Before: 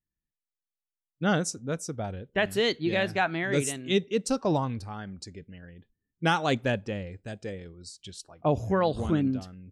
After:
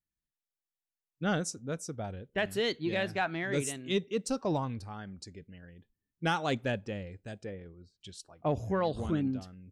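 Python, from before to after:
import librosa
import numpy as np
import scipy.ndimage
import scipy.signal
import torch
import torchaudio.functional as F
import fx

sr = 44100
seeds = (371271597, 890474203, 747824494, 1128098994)

p1 = fx.lowpass(x, sr, hz=fx.line((7.44, 2600.0), (8.0, 1300.0)), slope=12, at=(7.44, 8.0), fade=0.02)
p2 = 10.0 ** (-21.5 / 20.0) * np.tanh(p1 / 10.0 ** (-21.5 / 20.0))
p3 = p1 + F.gain(torch.from_numpy(p2), -9.0).numpy()
y = F.gain(torch.from_numpy(p3), -7.0).numpy()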